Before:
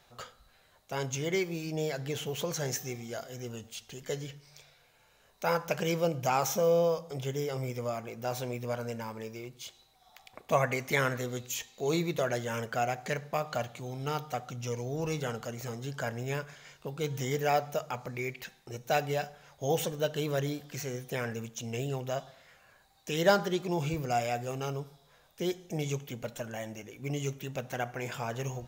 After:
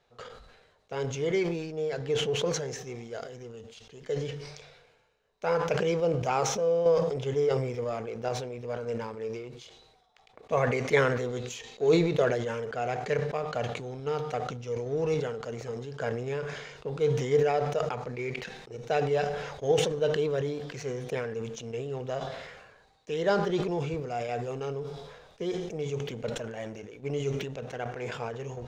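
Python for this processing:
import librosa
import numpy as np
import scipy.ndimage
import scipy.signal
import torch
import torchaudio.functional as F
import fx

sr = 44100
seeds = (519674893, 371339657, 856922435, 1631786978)

y = fx.law_mismatch(x, sr, coded='A')
y = fx.peak_eq(y, sr, hz=450.0, db=11.0, octaves=0.34)
y = fx.tremolo_random(y, sr, seeds[0], hz=3.5, depth_pct=55)
y = fx.air_absorb(y, sr, metres=97.0)
y = fx.sustainer(y, sr, db_per_s=45.0)
y = y * librosa.db_to_amplitude(2.0)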